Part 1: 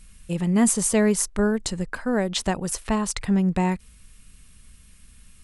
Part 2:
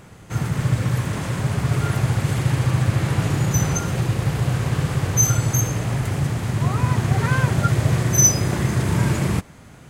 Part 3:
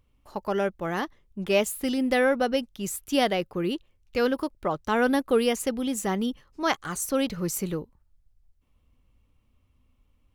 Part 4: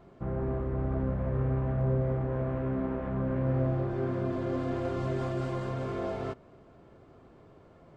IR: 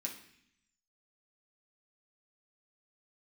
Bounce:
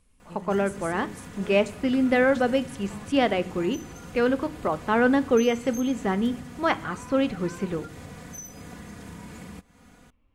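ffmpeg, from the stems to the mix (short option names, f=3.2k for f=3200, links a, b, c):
-filter_complex "[0:a]alimiter=limit=-16dB:level=0:latency=1:release=245,volume=-17dB[a];[1:a]aecho=1:1:4.1:0.87,acompressor=threshold=-29dB:ratio=6,adelay=200,volume=-10dB[b];[2:a]lowpass=2.7k,volume=1dB,asplit=2[c][d];[d]volume=-8dB[e];[4:a]atrim=start_sample=2205[f];[e][f]afir=irnorm=-1:irlink=0[g];[a][b][c][g]amix=inputs=4:normalize=0"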